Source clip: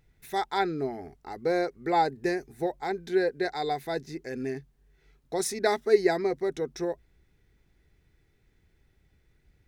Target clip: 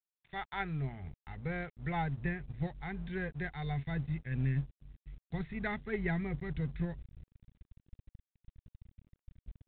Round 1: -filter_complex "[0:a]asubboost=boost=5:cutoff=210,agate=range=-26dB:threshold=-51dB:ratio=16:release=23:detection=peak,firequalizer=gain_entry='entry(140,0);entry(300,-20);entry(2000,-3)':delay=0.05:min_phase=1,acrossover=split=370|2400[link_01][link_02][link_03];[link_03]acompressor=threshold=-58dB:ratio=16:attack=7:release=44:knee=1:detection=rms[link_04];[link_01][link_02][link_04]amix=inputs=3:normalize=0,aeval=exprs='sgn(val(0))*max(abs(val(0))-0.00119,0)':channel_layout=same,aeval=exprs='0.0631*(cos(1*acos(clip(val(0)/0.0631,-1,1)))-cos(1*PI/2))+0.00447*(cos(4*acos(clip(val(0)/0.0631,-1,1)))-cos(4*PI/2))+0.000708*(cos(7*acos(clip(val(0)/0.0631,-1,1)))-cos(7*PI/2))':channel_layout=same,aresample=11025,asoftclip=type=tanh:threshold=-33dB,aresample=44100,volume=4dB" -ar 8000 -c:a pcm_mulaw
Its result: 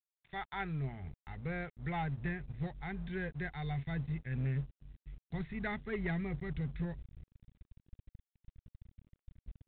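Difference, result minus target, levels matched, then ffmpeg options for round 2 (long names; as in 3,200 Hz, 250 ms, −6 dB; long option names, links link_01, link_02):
soft clipping: distortion +12 dB
-filter_complex "[0:a]asubboost=boost=5:cutoff=210,agate=range=-26dB:threshold=-51dB:ratio=16:release=23:detection=peak,firequalizer=gain_entry='entry(140,0);entry(300,-20);entry(2000,-3)':delay=0.05:min_phase=1,acrossover=split=370|2400[link_01][link_02][link_03];[link_03]acompressor=threshold=-58dB:ratio=16:attack=7:release=44:knee=1:detection=rms[link_04];[link_01][link_02][link_04]amix=inputs=3:normalize=0,aeval=exprs='sgn(val(0))*max(abs(val(0))-0.00119,0)':channel_layout=same,aeval=exprs='0.0631*(cos(1*acos(clip(val(0)/0.0631,-1,1)))-cos(1*PI/2))+0.00447*(cos(4*acos(clip(val(0)/0.0631,-1,1)))-cos(4*PI/2))+0.000708*(cos(7*acos(clip(val(0)/0.0631,-1,1)))-cos(7*PI/2))':channel_layout=same,aresample=11025,asoftclip=type=tanh:threshold=-24.5dB,aresample=44100,volume=4dB" -ar 8000 -c:a pcm_mulaw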